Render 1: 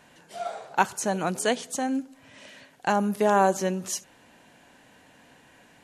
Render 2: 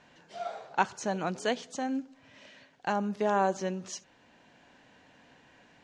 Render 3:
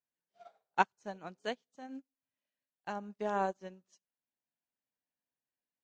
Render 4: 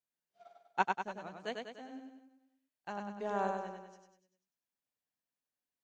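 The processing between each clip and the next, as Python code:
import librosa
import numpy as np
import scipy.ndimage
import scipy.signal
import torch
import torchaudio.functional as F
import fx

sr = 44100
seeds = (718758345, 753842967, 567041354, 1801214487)

y1 = scipy.signal.sosfilt(scipy.signal.butter(4, 6200.0, 'lowpass', fs=sr, output='sos'), x)
y1 = fx.rider(y1, sr, range_db=10, speed_s=2.0)
y1 = F.gain(torch.from_numpy(y1), -6.5).numpy()
y2 = fx.upward_expand(y1, sr, threshold_db=-49.0, expansion=2.5)
y3 = fx.echo_feedback(y2, sr, ms=98, feedback_pct=53, wet_db=-4)
y3 = F.gain(torch.from_numpy(y3), -3.0).numpy()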